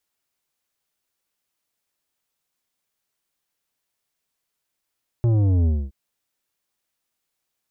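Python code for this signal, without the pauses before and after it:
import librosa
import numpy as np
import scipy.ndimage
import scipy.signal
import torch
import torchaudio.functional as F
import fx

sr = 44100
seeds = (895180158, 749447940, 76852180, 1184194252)

y = fx.sub_drop(sr, level_db=-16.5, start_hz=120.0, length_s=0.67, drive_db=10.0, fade_s=0.25, end_hz=65.0)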